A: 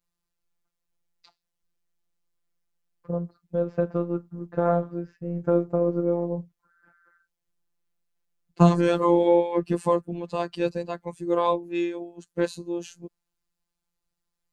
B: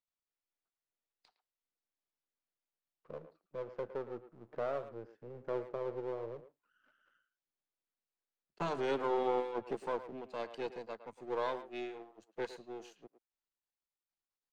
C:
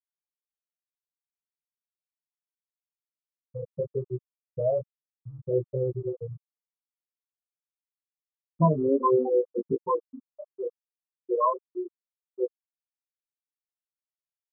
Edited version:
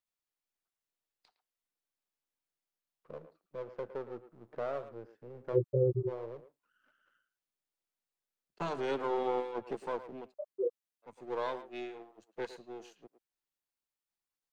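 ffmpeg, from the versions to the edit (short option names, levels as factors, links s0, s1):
-filter_complex "[2:a]asplit=2[s0][s1];[1:a]asplit=3[s2][s3][s4];[s2]atrim=end=5.58,asetpts=PTS-STARTPTS[s5];[s0]atrim=start=5.52:end=6.12,asetpts=PTS-STARTPTS[s6];[s3]atrim=start=6.06:end=10.34,asetpts=PTS-STARTPTS[s7];[s1]atrim=start=10.24:end=11.12,asetpts=PTS-STARTPTS[s8];[s4]atrim=start=11.02,asetpts=PTS-STARTPTS[s9];[s5][s6]acrossfade=d=0.06:c1=tri:c2=tri[s10];[s10][s7]acrossfade=d=0.06:c1=tri:c2=tri[s11];[s11][s8]acrossfade=d=0.1:c1=tri:c2=tri[s12];[s12][s9]acrossfade=d=0.1:c1=tri:c2=tri"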